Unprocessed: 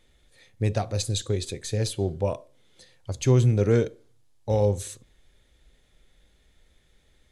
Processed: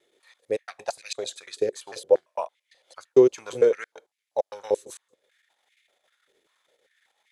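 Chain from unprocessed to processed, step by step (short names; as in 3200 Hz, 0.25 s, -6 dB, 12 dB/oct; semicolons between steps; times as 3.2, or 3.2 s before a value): slices in reverse order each 0.113 s, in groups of 2; transient shaper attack +3 dB, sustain -7 dB; stepped high-pass 5.1 Hz 390–2200 Hz; gain -3 dB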